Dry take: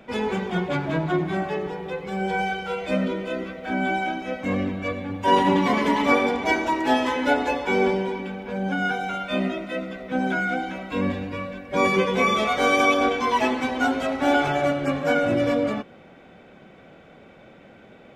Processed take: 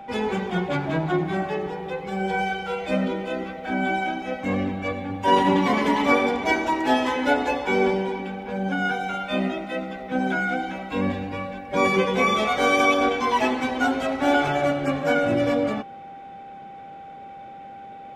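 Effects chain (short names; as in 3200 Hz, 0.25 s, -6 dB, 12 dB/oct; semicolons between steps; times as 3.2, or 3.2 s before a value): whine 790 Hz -38 dBFS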